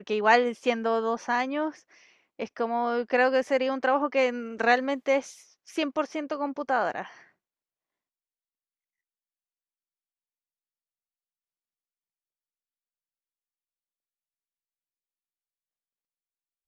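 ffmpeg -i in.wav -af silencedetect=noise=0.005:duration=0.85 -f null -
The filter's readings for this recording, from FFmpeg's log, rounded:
silence_start: 7.23
silence_end: 16.67 | silence_duration: 9.44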